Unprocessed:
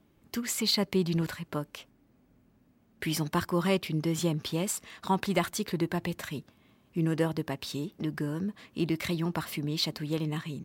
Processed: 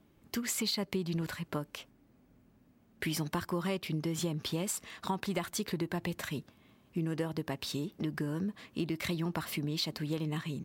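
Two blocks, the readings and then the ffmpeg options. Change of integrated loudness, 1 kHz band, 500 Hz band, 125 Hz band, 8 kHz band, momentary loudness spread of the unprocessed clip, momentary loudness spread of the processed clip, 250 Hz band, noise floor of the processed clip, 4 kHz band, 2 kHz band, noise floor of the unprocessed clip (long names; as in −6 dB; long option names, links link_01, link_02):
−4.5 dB, −5.5 dB, −5.5 dB, −4.0 dB, −2.5 dB, 9 LU, 5 LU, −4.5 dB, −66 dBFS, −4.5 dB, −3.5 dB, −66 dBFS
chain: -af "acompressor=threshold=-30dB:ratio=6"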